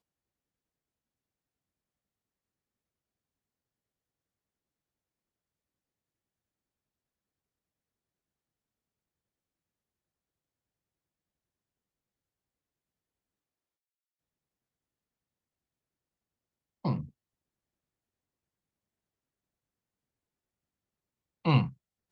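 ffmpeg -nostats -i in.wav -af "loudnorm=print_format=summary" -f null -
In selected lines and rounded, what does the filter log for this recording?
Input Integrated:    -30.0 LUFS
Input True Peak:     -12.4 dBTP
Input LRA:             7.3 LU
Input Threshold:     -40.7 LUFS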